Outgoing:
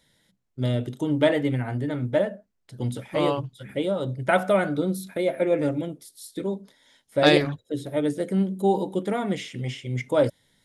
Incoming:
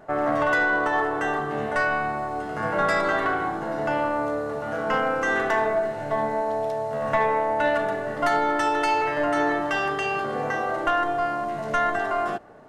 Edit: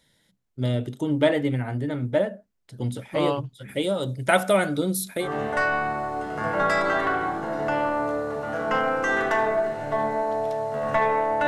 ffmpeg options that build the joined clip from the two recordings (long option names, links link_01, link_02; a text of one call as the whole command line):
ffmpeg -i cue0.wav -i cue1.wav -filter_complex "[0:a]asettb=1/sr,asplit=3[link_01][link_02][link_03];[link_01]atrim=end=3.684[link_04];[link_02]atrim=start=3.68:end=5.29,asetpts=PTS-STARTPTS,afade=type=in:duration=0.004:curve=qsin,afade=type=out:start_time=1.606:duration=0.004:curve=qsin,highshelf=frequency=3200:gain=12[link_05];[link_03]atrim=start=5.286[link_06];[link_04][link_05]acrossfade=duration=0.004:curve1=hsin:curve2=qsin[link_07];[link_07][link_06]acrossfade=duration=0.004:curve1=qsin:curve2=hsin,apad=whole_dur=11.47,atrim=end=11.47,atrim=end=5.29,asetpts=PTS-STARTPTS[link_08];[1:a]atrim=start=1.38:end=7.66,asetpts=PTS-STARTPTS[link_09];[link_08][link_09]acrossfade=duration=0.1:curve1=tri:curve2=tri" out.wav